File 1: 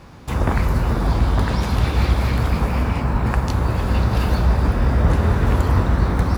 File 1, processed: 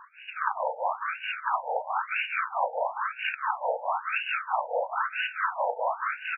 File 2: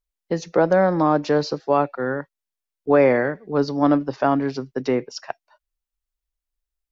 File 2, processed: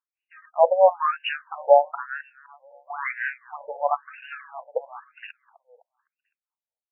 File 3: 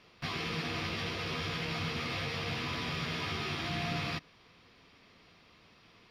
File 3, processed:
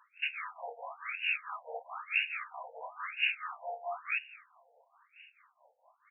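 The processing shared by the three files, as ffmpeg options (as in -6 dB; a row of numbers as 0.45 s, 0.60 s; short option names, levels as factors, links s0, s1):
-filter_complex "[0:a]highpass=f=59:w=0.5412,highpass=f=59:w=1.3066,highshelf=f=2300:t=q:w=3:g=6,tremolo=f=4.6:d=0.88,acrossover=split=200[s0][s1];[s0]acrusher=samples=31:mix=1:aa=0.000001[s2];[s2][s1]amix=inputs=2:normalize=0,aecho=1:1:255|510|765|1020:0.1|0.05|0.025|0.0125,afftfilt=real='re*between(b*sr/1024,640*pow(2100/640,0.5+0.5*sin(2*PI*1*pts/sr))/1.41,640*pow(2100/640,0.5+0.5*sin(2*PI*1*pts/sr))*1.41)':imag='im*between(b*sr/1024,640*pow(2100/640,0.5+0.5*sin(2*PI*1*pts/sr))/1.41,640*pow(2100/640,0.5+0.5*sin(2*PI*1*pts/sr))*1.41)':win_size=1024:overlap=0.75,volume=2.51"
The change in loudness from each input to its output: -10.0 LU, -2.5 LU, -0.5 LU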